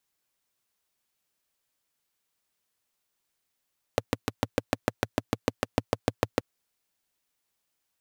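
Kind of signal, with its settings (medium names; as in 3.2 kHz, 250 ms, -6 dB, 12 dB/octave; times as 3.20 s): single-cylinder engine model, steady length 2.43 s, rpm 800, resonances 110/270/470 Hz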